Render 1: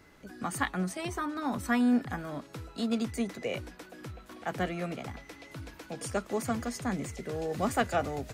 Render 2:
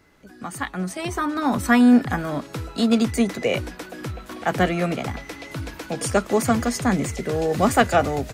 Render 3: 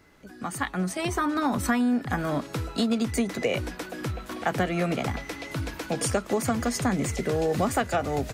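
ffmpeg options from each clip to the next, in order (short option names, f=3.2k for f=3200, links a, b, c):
-af "dynaudnorm=f=690:g=3:m=12dB"
-af "acompressor=threshold=-21dB:ratio=10"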